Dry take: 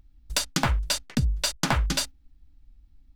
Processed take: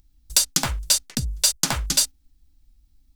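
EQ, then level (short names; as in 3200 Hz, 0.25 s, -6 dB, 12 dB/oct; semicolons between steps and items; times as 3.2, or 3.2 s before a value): tone controls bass -1 dB, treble +15 dB; -2.5 dB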